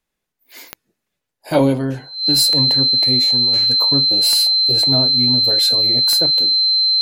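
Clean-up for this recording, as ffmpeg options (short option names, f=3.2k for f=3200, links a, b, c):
-af "adeclick=t=4,bandreject=f=4.1k:w=30"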